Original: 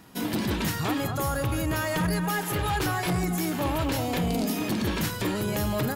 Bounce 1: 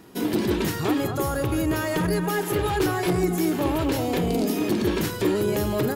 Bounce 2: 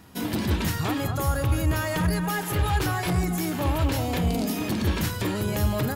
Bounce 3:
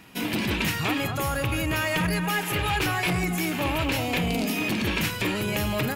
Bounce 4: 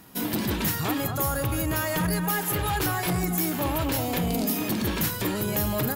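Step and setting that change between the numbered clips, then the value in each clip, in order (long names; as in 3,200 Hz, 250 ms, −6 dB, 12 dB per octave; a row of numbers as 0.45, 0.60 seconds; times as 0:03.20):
parametric band, centre frequency: 380, 77, 2,500, 15,000 Hertz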